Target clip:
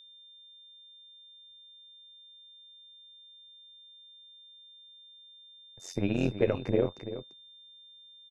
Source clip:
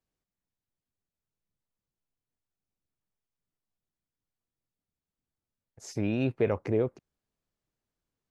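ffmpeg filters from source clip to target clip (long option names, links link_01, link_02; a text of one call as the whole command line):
ffmpeg -i in.wav -af "aecho=1:1:342:0.266,tremolo=f=90:d=0.889,aeval=exprs='val(0)+0.00178*sin(2*PI*3600*n/s)':channel_layout=same,volume=3.5dB" out.wav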